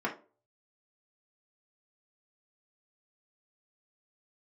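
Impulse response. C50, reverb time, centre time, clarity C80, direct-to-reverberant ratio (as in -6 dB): 11.5 dB, 0.35 s, 15 ms, 17.5 dB, -4.0 dB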